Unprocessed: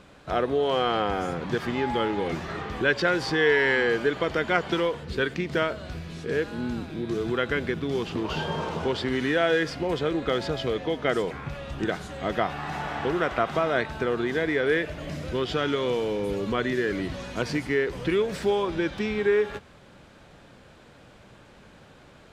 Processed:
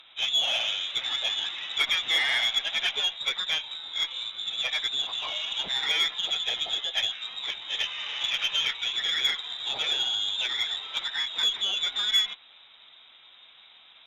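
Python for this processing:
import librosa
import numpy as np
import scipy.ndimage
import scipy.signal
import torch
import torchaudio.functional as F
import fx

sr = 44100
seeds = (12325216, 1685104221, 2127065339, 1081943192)

y = fx.freq_invert(x, sr, carrier_hz=3800)
y = fx.peak_eq(y, sr, hz=910.0, db=11.0, octaves=1.8)
y = fx.stretch_vocoder_free(y, sr, factor=0.63)
y = fx.cheby_harmonics(y, sr, harmonics=(6,), levels_db=(-27,), full_scale_db=-9.0)
y = fx.high_shelf(y, sr, hz=2200.0, db=11.0)
y = y * 10.0 ** (-8.5 / 20.0)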